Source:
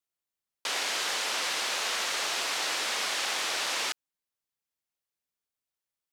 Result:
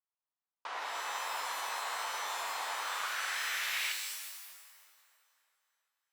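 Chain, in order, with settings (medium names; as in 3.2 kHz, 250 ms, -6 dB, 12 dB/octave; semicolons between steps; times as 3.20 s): band-pass sweep 980 Hz -> 3.3 kHz, 2.66–4.33 s; two-band feedback delay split 1.5 kHz, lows 327 ms, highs 196 ms, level -14.5 dB; pitch-shifted reverb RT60 1.1 s, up +12 st, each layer -2 dB, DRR 5.5 dB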